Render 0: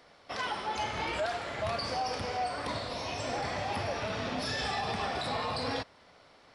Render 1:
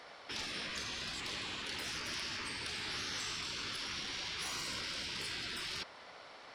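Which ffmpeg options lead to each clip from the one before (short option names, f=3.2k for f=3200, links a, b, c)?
-filter_complex "[0:a]asplit=2[a][b];[b]highpass=f=720:p=1,volume=12dB,asoftclip=type=tanh:threshold=-21.5dB[c];[a][c]amix=inputs=2:normalize=0,lowpass=f=5.9k:p=1,volume=-6dB,afftfilt=real='re*lt(hypot(re,im),0.0316)':imag='im*lt(hypot(re,im),0.0316)':win_size=1024:overlap=0.75"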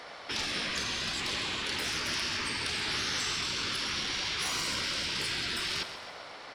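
-af "aecho=1:1:133|266|399|532|665|798:0.266|0.144|0.0776|0.0419|0.0226|0.0122,volume=7.5dB"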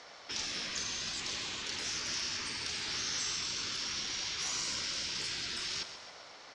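-af "lowpass=f=6.5k:t=q:w=3.6,volume=-8dB"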